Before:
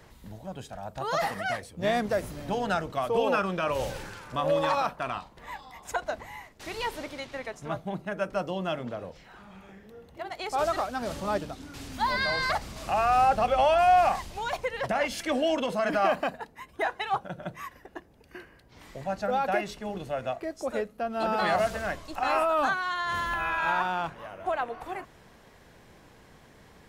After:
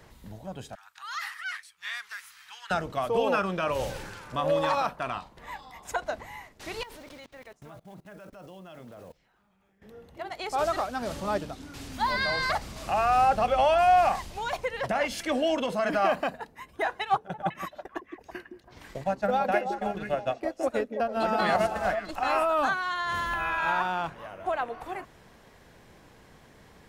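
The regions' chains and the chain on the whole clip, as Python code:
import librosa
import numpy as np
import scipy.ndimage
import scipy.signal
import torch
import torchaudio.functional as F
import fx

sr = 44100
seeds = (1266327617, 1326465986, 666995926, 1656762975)

y = fx.chain(x, sr, fx.cheby2_highpass(hz=640.0, order=4, stop_db=40),
    fx.high_shelf(hz=4900.0, db=-4.5), at=(0.75, 2.71))
y = fx.chain(y, sr, fx.block_float(bits=5),
    fx.level_steps(step_db=23), at=(6.83, 9.82))
y = fx.chain(y, sr, fx.transient(attack_db=5, sustain_db=-10),
    fx.echo_stepped(ms=164, hz=280.0, octaves=1.4, feedback_pct=70, wet_db=-2.5), at=(17.01, 22.11))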